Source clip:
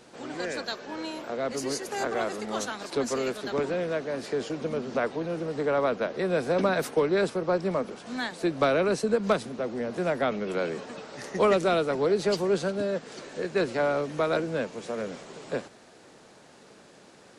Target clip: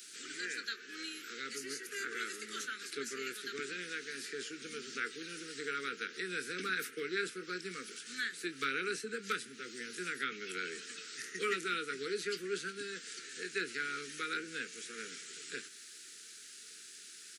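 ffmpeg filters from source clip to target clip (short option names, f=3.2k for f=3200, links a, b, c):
-filter_complex "[0:a]asuperstop=centerf=770:order=12:qfactor=0.88,aderivative,asplit=2[a][b];[b]adelay=22,volume=-11dB[c];[a][c]amix=inputs=2:normalize=0,acrossover=split=120|2300[d][e][f];[f]acompressor=threshold=-58dB:ratio=6[g];[d][e][g]amix=inputs=3:normalize=0,volume=11.5dB"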